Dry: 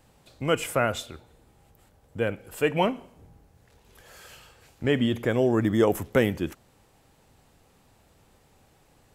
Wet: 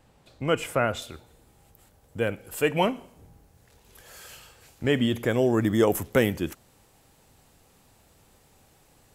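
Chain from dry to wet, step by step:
high-shelf EQ 5,100 Hz −5.5 dB, from 0:01.02 +7 dB

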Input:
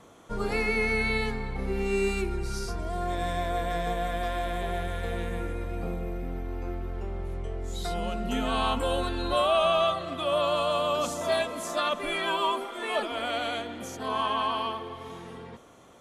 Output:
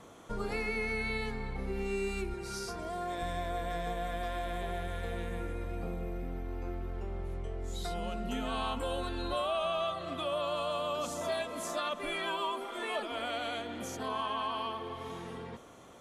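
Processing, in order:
0:02.34–0:03.22: high-pass filter 230 Hz 6 dB per octave
downward compressor 2 to 1, threshold −37 dBFS, peak gain reduction 9.5 dB

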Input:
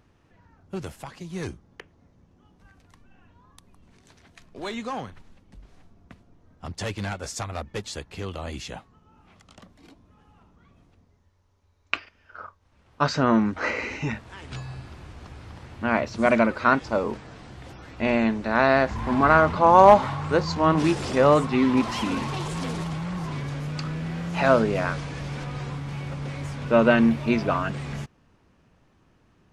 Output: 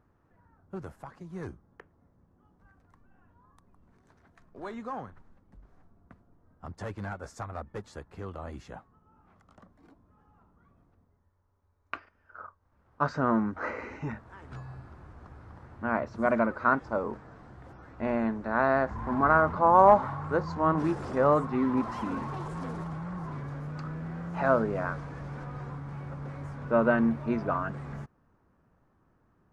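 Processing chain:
high shelf with overshoot 2,000 Hz −11 dB, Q 1.5
level −6.5 dB

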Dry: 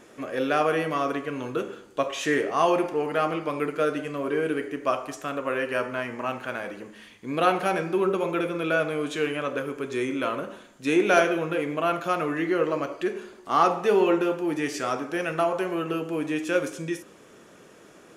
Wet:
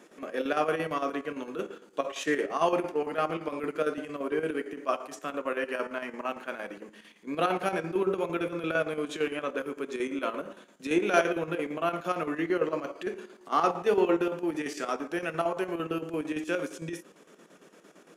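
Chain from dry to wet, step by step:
elliptic high-pass filter 160 Hz
square-wave tremolo 8.8 Hz, depth 60%, duty 65%
level −2.5 dB

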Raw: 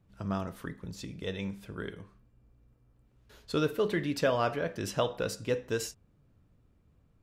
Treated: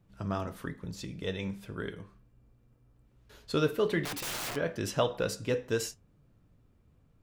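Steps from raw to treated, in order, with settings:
0:04.05–0:04.56: wrap-around overflow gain 32.5 dB
flanger 0.95 Hz, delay 5.6 ms, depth 3.1 ms, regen −72%
level +5.5 dB

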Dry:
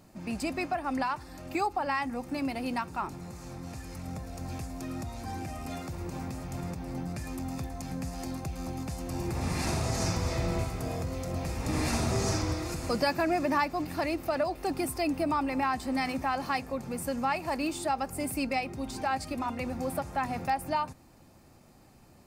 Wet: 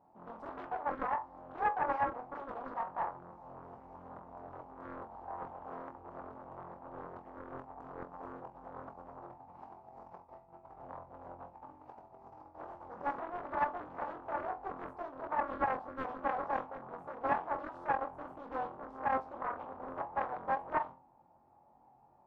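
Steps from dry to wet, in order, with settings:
spectral tilt −4 dB per octave
compressor whose output falls as the input rises −24 dBFS, ratio −0.5
brickwall limiter −17 dBFS, peak gain reduction 4.5 dB
hard clipping −25 dBFS, distortion −11 dB
resonant band-pass 860 Hz, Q 7.6
flutter between parallel walls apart 3.9 metres, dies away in 0.28 s
on a send at −14.5 dB: convolution reverb RT60 0.40 s, pre-delay 7 ms
on the sum: highs frequency-modulated by the lows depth 0.73 ms
level +1 dB

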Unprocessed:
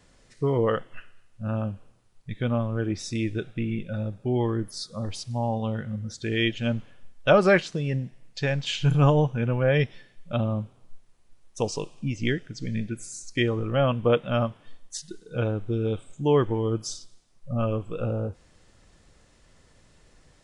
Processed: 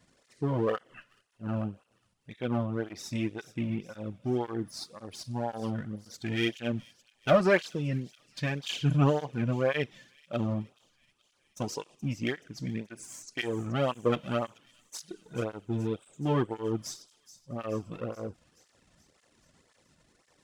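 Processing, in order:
gain on one half-wave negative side −7 dB
delay with a high-pass on its return 427 ms, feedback 64%, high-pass 4,800 Hz, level −13 dB
through-zero flanger with one copy inverted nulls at 1.9 Hz, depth 2.7 ms

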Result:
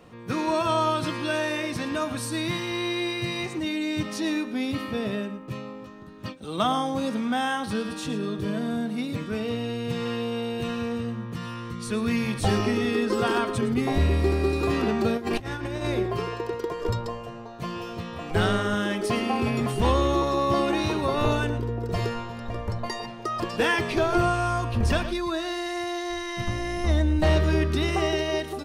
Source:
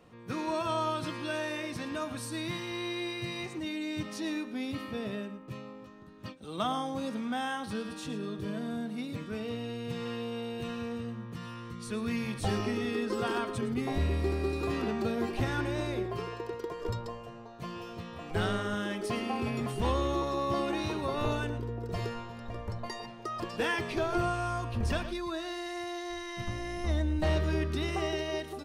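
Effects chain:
0:15.17–0:15.88: compressor whose output falls as the input rises −36 dBFS, ratio −0.5
level +7.5 dB

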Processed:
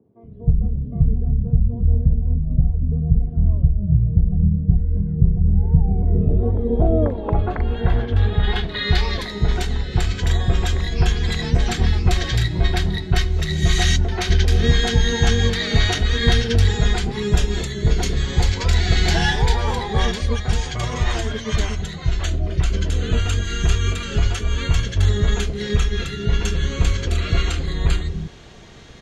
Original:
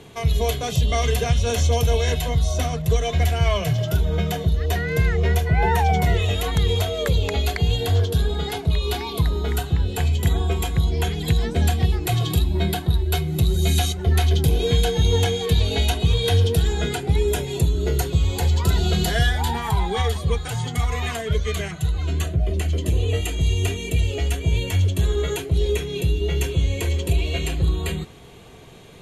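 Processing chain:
low-pass filter sweep 200 Hz → 5,600 Hz, 0:05.62–0:09.11
three-band delay without the direct sound mids, highs, lows 40/230 ms, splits 360/2,100 Hz
pitch-shifted copies added −12 semitones −1 dB

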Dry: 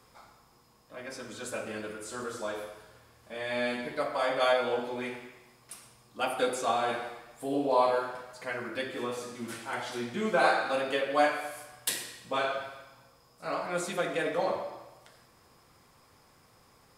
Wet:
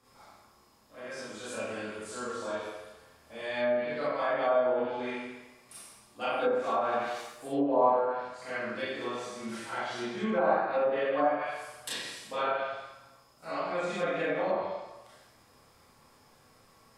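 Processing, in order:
0:06.49–0:07.18: spike at every zero crossing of −27.5 dBFS
four-comb reverb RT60 0.72 s, combs from 28 ms, DRR −8 dB
treble cut that deepens with the level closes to 1,100 Hz, closed at −14.5 dBFS
level −8 dB

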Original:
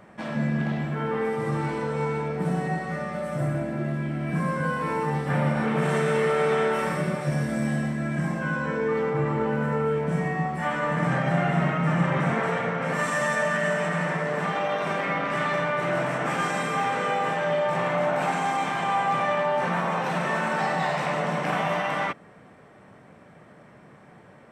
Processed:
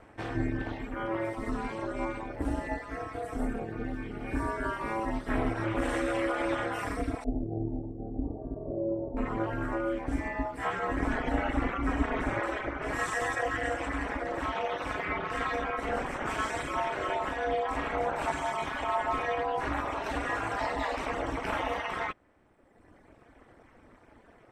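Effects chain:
reverb reduction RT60 1.6 s
0:07.24–0:09.17: Butterworth low-pass 640 Hz 36 dB per octave
ring modulation 110 Hz

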